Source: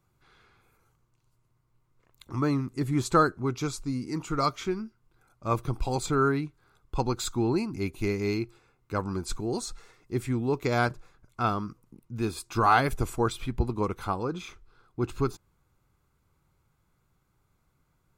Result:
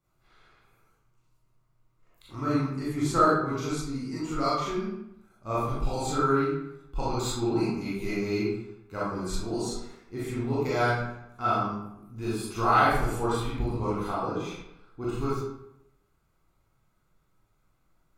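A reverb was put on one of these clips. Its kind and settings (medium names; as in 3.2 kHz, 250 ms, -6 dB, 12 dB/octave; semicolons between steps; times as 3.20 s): algorithmic reverb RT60 0.83 s, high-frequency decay 0.7×, pre-delay 0 ms, DRR -9.5 dB; trim -9 dB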